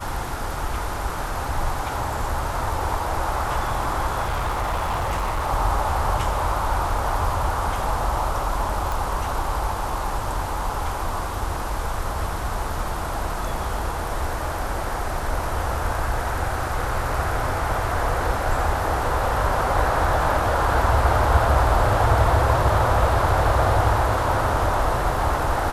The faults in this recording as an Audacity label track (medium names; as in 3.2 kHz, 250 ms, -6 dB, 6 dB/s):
4.220000	5.470000	clipped -20.5 dBFS
8.920000	8.920000	pop